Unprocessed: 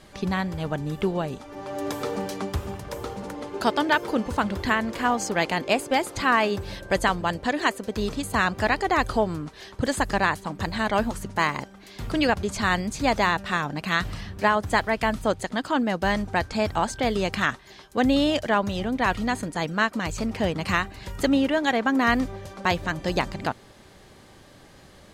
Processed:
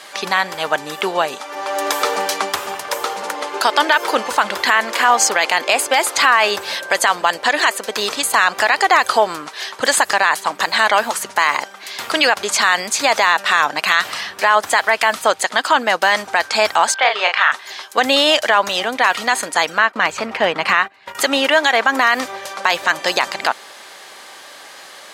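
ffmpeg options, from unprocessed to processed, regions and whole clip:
ffmpeg -i in.wav -filter_complex "[0:a]asettb=1/sr,asplit=3[link_01][link_02][link_03];[link_01]atrim=end=16.944[link_04];[link_02]atrim=start=16.94:end=17.52,asetpts=PTS-STARTPTS,afade=type=in:duration=0.004:curve=qsin,afade=type=out:start_time=0.576:duration=0.004:curve=qsin,asuperpass=centerf=1400:order=4:qfactor=0.55,asplit=2[link_05][link_06];[link_06]adelay=34,volume=-5dB[link_07];[link_05][link_07]amix=inputs=2:normalize=0,atrim=end_sample=25578[link_08];[link_03]atrim=start=17.516[link_09];[link_04][link_08]acrossfade=duration=0.004:curve1=hsin:curve2=qsin[link_10];[link_10][link_09]acrossfade=duration=0.004:curve1=qsin:curve2=hsin,asettb=1/sr,asplit=3[link_11][link_12][link_13];[link_11]atrim=end=19.784[link_14];[link_12]atrim=start=19.78:end=21.15,asetpts=PTS-STARTPTS,afade=type=in:duration=0.004:curve=qsin,afade=type=out:start_time=1.366:duration=0.004:curve=qsin,highpass=47,agate=range=-18dB:threshold=-36dB:ratio=16:release=100:detection=peak,bass=frequency=250:gain=5,treble=frequency=4000:gain=-14[link_15];[link_13]atrim=start=21.146[link_16];[link_14][link_15]acrossfade=duration=0.004:curve1=hsin:curve2=qsin[link_17];[link_17][link_16]acrossfade=duration=0.004:curve1=qsin:curve2=hsin,highpass=830,alimiter=level_in=18dB:limit=-1dB:release=50:level=0:latency=1,volume=-1dB" out.wav

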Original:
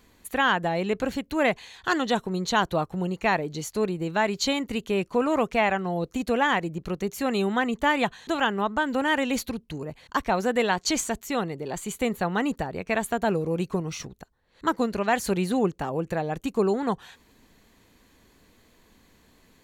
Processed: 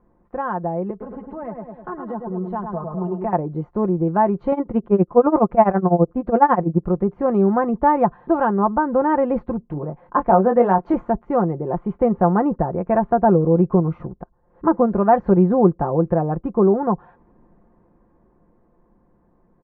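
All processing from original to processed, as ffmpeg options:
ffmpeg -i in.wav -filter_complex "[0:a]asettb=1/sr,asplit=3[link_01][link_02][link_03];[link_01]atrim=end=0.904[link_04];[link_02]atrim=start=0.9:end=3.33,asetpts=PTS-STARTPTS,afade=type=in:duration=0.004:curve=qsin,afade=type=out:start_time=2.426:duration=0.004:curve=qsin,aecho=1:1:4.7:0.72,atrim=end_sample=107163,asplit=2[link_05][link_06];[link_06]adelay=103,lowpass=frequency=1800:poles=1,volume=-5.5dB,asplit=2[link_07][link_08];[link_08]adelay=103,lowpass=frequency=1800:poles=1,volume=0.41,asplit=2[link_09][link_10];[link_10]adelay=103,lowpass=frequency=1800:poles=1,volume=0.41,asplit=2[link_11][link_12];[link_12]adelay=103,lowpass=frequency=1800:poles=1,volume=0.41,asplit=2[link_13][link_14];[link_14]adelay=103,lowpass=frequency=1800:poles=1,volume=0.41[link_15];[link_05][link_07][link_09][link_11][link_13][link_15]amix=inputs=6:normalize=0,atrim=end_sample=107163,acrossover=split=120|280[link_16][link_17][link_18];[link_16]acompressor=threshold=-51dB:ratio=4[link_19];[link_17]acompressor=threshold=-39dB:ratio=4[link_20];[link_18]acompressor=threshold=-30dB:ratio=4[link_21];[link_19][link_20][link_21]amix=inputs=3:normalize=0[link_22];[link_03]atrim=start=3.326[link_23];[link_04][link_22]acrossfade=duration=0.004:curve1=hsin:curve2=qsin[link_24];[link_24][link_23]acrossfade=duration=0.004:curve1=qsin:curve2=hsin,asettb=1/sr,asplit=3[link_25][link_26][link_27];[link_25]atrim=end=4.524[link_28];[link_26]atrim=start=4.52:end=6.83,asetpts=PTS-STARTPTS,afade=type=in:duration=0.004:curve=qsin,afade=type=out:start_time=2.306:duration=0.004:curve=qsin,tremolo=f=12:d=0.91,acontrast=26[link_29];[link_27]atrim=start=6.826[link_30];[link_28][link_29]acrossfade=duration=0.004:curve1=hsin:curve2=qsin[link_31];[link_31][link_30]acrossfade=duration=0.004:curve1=qsin:curve2=hsin,asettb=1/sr,asplit=3[link_32][link_33][link_34];[link_32]atrim=end=9.654[link_35];[link_33]atrim=start=9.65:end=10.94,asetpts=PTS-STARTPTS,afade=type=in:duration=0.004:curve=qsin,afade=type=out:start_time=1.286:duration=0.004:curve=qsin,equalizer=frequency=67:width_type=o:width=1.5:gain=-12.5,asplit=2[link_36][link_37];[link_37]adelay=21,volume=-6dB[link_38];[link_36][link_38]amix=inputs=2:normalize=0,atrim=end_sample=56889[link_39];[link_34]atrim=start=10.936[link_40];[link_35][link_39]acrossfade=duration=0.004:curve1=hsin:curve2=qsin[link_41];[link_41][link_40]acrossfade=duration=0.004:curve1=qsin:curve2=hsin,lowpass=frequency=1100:width=0.5412,lowpass=frequency=1100:width=1.3066,aecho=1:1:5.7:0.49,dynaudnorm=framelen=280:gausssize=21:maxgain=11.5dB" out.wav

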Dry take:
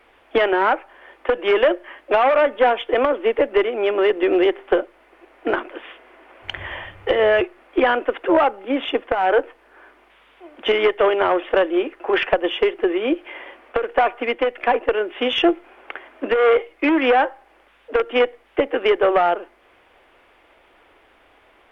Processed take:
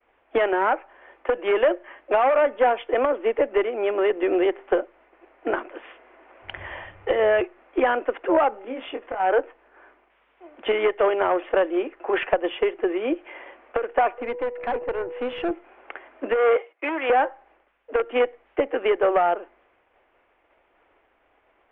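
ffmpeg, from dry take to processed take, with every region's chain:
ffmpeg -i in.wav -filter_complex "[0:a]asettb=1/sr,asplit=3[link_01][link_02][link_03];[link_01]atrim=end=8.504[link_04];[link_02]atrim=start=8.5:end=9.2,asetpts=PTS-STARTPTS,afade=type=in:duration=0.004:curve=qsin,afade=type=out:start_time=0.696:duration=0.004:curve=qsin,acompressor=threshold=-29dB:ratio=2:attack=3.2:release=140:knee=1:detection=peak,asplit=2[link_05][link_06];[link_06]adelay=23,volume=-5.5dB[link_07];[link_05][link_07]amix=inputs=2:normalize=0,atrim=end_sample=30870[link_08];[link_03]atrim=start=9.196[link_09];[link_04][link_08]acrossfade=duration=0.004:curve1=hsin:curve2=qsin[link_10];[link_10][link_09]acrossfade=duration=0.004:curve1=qsin:curve2=hsin,asettb=1/sr,asplit=3[link_11][link_12][link_13];[link_11]atrim=end=14.184[link_14];[link_12]atrim=start=14.18:end=15.51,asetpts=PTS-STARTPTS,afade=type=in:duration=0.004:curve=qsin,afade=type=out:start_time=1.326:duration=0.004:curve=qsin,lowpass=2200,aeval=exprs='val(0)+0.0447*sin(2*PI*490*n/s)':channel_layout=same,aeval=exprs='(tanh(7.08*val(0)+0.45)-tanh(0.45))/7.08':channel_layout=same[link_15];[link_13]atrim=start=15.506[link_16];[link_14][link_15]acrossfade=duration=0.004:curve1=hsin:curve2=qsin[link_17];[link_17][link_16]acrossfade=duration=0.004:curve1=qsin:curve2=hsin,asettb=1/sr,asplit=3[link_18][link_19][link_20];[link_18]atrim=end=16.564[link_21];[link_19]atrim=start=16.56:end=17.1,asetpts=PTS-STARTPTS,afade=type=in:duration=0.004:curve=qsin,afade=type=out:start_time=0.536:duration=0.004:curve=qsin,highpass=510,agate=range=-11dB:threshold=-52dB:ratio=16:release=100:detection=peak[link_22];[link_20]atrim=start=17.096[link_23];[link_21][link_22]acrossfade=duration=0.004:curve1=hsin:curve2=qsin[link_24];[link_24][link_23]acrossfade=duration=0.004:curve1=qsin:curve2=hsin,lowpass=frequency=2900:width=0.5412,lowpass=frequency=2900:width=1.3066,agate=range=-33dB:threshold=-49dB:ratio=3:detection=peak,equalizer=frequency=670:width_type=o:width=1.4:gain=3,volume=-5.5dB" out.wav

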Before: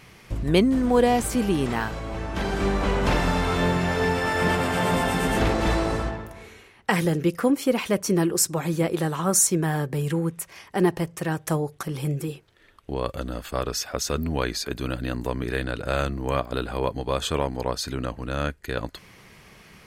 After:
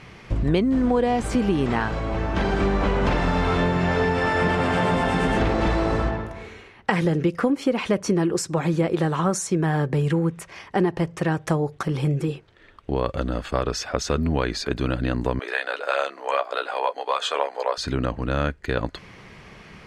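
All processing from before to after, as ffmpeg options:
ffmpeg -i in.wav -filter_complex "[0:a]asettb=1/sr,asplit=3[link_01][link_02][link_03];[link_01]atrim=end=15.394[link_04];[link_02]atrim=start=15.39:end=17.78,asetpts=PTS-STARTPTS,afade=type=in:duration=0.004:curve=qsin,afade=type=out:start_time=2.386:duration=0.004:curve=qsin,highpass=frequency=530:width=0.5412,highpass=frequency=530:width=1.3066,asplit=2[link_05][link_06];[link_06]adelay=14,volume=-5.5dB[link_07];[link_05][link_07]amix=inputs=2:normalize=0,atrim=end_sample=105399[link_08];[link_03]atrim=start=17.776[link_09];[link_04][link_08]acrossfade=duration=0.004:curve1=hsin:curve2=qsin[link_10];[link_10][link_09]acrossfade=duration=0.004:curve1=qsin:curve2=hsin,lowpass=9900,acompressor=threshold=-23dB:ratio=6,aemphasis=mode=reproduction:type=50fm,volume=5.5dB" out.wav

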